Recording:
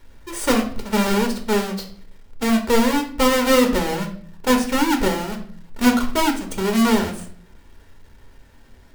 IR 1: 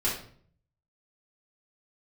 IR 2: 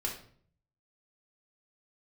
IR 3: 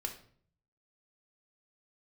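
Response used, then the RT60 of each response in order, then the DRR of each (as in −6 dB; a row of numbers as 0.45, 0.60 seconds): 3; 0.55, 0.55, 0.55 seconds; −8.5, −2.0, 3.0 decibels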